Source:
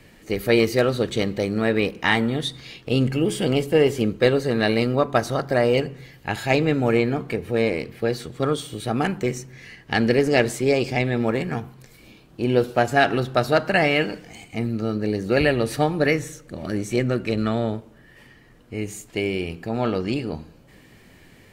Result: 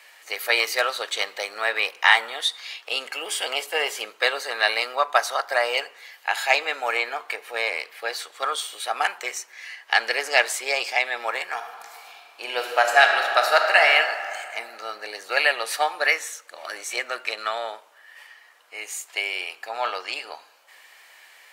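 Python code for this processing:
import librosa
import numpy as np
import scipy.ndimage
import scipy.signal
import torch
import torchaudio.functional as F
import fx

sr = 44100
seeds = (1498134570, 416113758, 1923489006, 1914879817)

y = fx.reverb_throw(x, sr, start_s=11.53, length_s=2.32, rt60_s=2.3, drr_db=3.0)
y = scipy.signal.sosfilt(scipy.signal.butter(4, 760.0, 'highpass', fs=sr, output='sos'), y)
y = y * 10.0 ** (5.0 / 20.0)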